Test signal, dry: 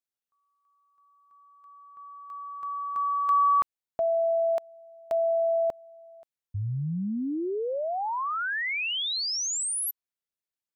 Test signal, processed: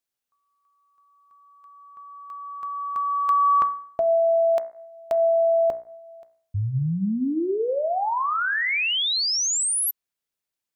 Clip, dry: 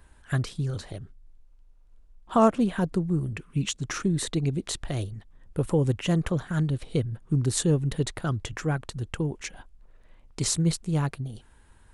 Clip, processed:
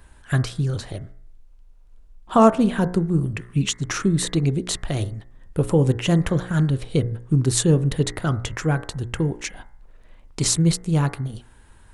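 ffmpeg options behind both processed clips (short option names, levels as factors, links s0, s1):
-af "bandreject=f=59.89:t=h:w=4,bandreject=f=119.78:t=h:w=4,bandreject=f=179.67:t=h:w=4,bandreject=f=239.56:t=h:w=4,bandreject=f=299.45:t=h:w=4,bandreject=f=359.34:t=h:w=4,bandreject=f=419.23:t=h:w=4,bandreject=f=479.12:t=h:w=4,bandreject=f=539.01:t=h:w=4,bandreject=f=598.9:t=h:w=4,bandreject=f=658.79:t=h:w=4,bandreject=f=718.68:t=h:w=4,bandreject=f=778.57:t=h:w=4,bandreject=f=838.46:t=h:w=4,bandreject=f=898.35:t=h:w=4,bandreject=f=958.24:t=h:w=4,bandreject=f=1018.13:t=h:w=4,bandreject=f=1078.02:t=h:w=4,bandreject=f=1137.91:t=h:w=4,bandreject=f=1197.8:t=h:w=4,bandreject=f=1257.69:t=h:w=4,bandreject=f=1317.58:t=h:w=4,bandreject=f=1377.47:t=h:w=4,bandreject=f=1437.36:t=h:w=4,bandreject=f=1497.25:t=h:w=4,bandreject=f=1557.14:t=h:w=4,bandreject=f=1617.03:t=h:w=4,bandreject=f=1676.92:t=h:w=4,bandreject=f=1736.81:t=h:w=4,bandreject=f=1796.7:t=h:w=4,bandreject=f=1856.59:t=h:w=4,bandreject=f=1916.48:t=h:w=4,bandreject=f=1976.37:t=h:w=4,bandreject=f=2036.26:t=h:w=4,bandreject=f=2096.15:t=h:w=4,bandreject=f=2156.04:t=h:w=4,volume=2"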